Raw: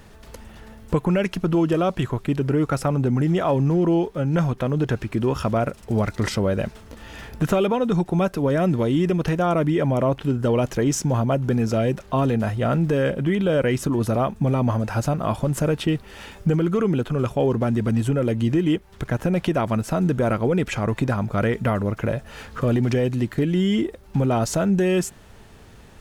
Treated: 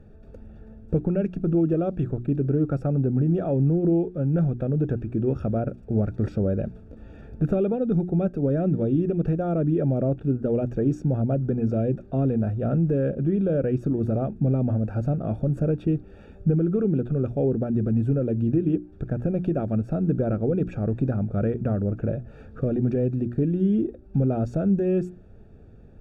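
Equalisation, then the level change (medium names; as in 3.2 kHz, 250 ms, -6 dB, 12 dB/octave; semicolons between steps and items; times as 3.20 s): boxcar filter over 43 samples; hum notches 60/120/180/240/300/360 Hz; 0.0 dB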